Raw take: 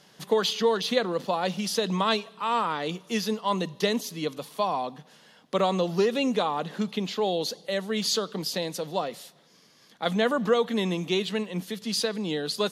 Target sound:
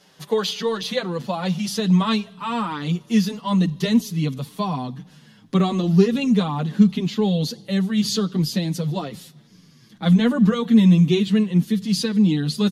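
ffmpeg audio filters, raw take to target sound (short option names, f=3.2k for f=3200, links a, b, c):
-filter_complex "[0:a]asubboost=boost=12:cutoff=170,asplit=2[a][b];[b]adelay=7,afreqshift=-2.2[c];[a][c]amix=inputs=2:normalize=1,volume=4.5dB"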